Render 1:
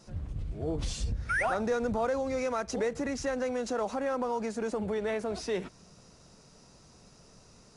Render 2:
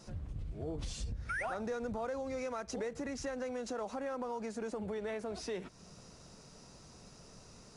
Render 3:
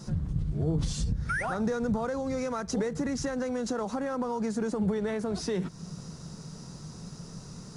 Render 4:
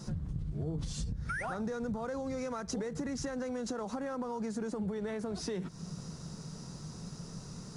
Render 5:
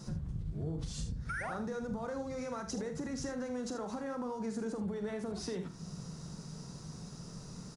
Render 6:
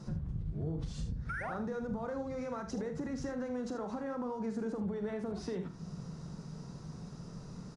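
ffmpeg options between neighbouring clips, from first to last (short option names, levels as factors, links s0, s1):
-af "acompressor=threshold=0.00631:ratio=2,volume=1.12"
-af "equalizer=f=160:t=o:w=0.67:g=12,equalizer=f=630:t=o:w=0.67:g=-5,equalizer=f=2500:t=o:w=0.67:g=-7,volume=2.66"
-af "acompressor=threshold=0.0224:ratio=3,volume=0.841"
-af "aecho=1:1:44|77:0.335|0.299,volume=0.75"
-af "lowpass=f=2200:p=1,volume=1.12"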